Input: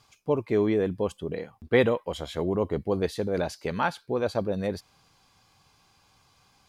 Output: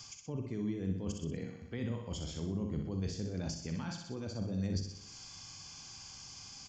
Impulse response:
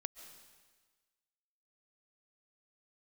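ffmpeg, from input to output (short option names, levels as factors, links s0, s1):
-filter_complex "[0:a]asplit=2[s0][s1];[s1]adelay=43,volume=0.299[s2];[s0][s2]amix=inputs=2:normalize=0,areverse,acompressor=threshold=0.0178:ratio=6,areverse,firequalizer=gain_entry='entry(260,0);entry(450,-6);entry(5300,11)':delay=0.05:min_phase=1,aresample=16000,aresample=44100,bandreject=f=3900:w=5.1,asplit=2[s3][s4];[s4]aecho=0:1:62|124|186|248|310|372:0.473|0.237|0.118|0.0591|0.0296|0.0148[s5];[s3][s5]amix=inputs=2:normalize=0,acrossover=split=260[s6][s7];[s7]acompressor=threshold=0.002:ratio=4[s8];[s6][s8]amix=inputs=2:normalize=0,highshelf=f=6000:g=4.5,volume=2.11"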